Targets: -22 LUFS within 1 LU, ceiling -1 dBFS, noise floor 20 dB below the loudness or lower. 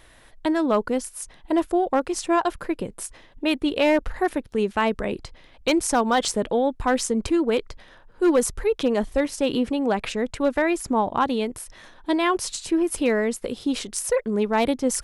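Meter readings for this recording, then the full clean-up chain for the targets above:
clipped 0.3%; flat tops at -12.0 dBFS; loudness -23.5 LUFS; peak -12.0 dBFS; loudness target -22.0 LUFS
-> clip repair -12 dBFS; gain +1.5 dB

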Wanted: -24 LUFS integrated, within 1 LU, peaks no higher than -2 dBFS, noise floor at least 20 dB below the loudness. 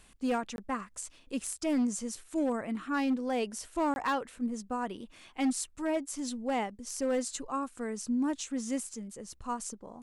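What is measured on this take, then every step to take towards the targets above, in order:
clipped 1.1%; flat tops at -24.0 dBFS; dropouts 2; longest dropout 21 ms; loudness -33.5 LUFS; peak -24.0 dBFS; loudness target -24.0 LUFS
-> clip repair -24 dBFS; interpolate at 0.56/3.94, 21 ms; gain +9.5 dB

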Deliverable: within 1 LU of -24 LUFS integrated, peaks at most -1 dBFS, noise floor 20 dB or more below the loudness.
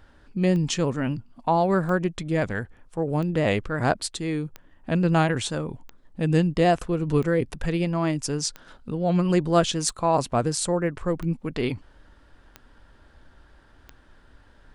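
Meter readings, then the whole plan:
clicks 11; loudness -25.0 LUFS; peak -4.5 dBFS; loudness target -24.0 LUFS
-> de-click; gain +1 dB

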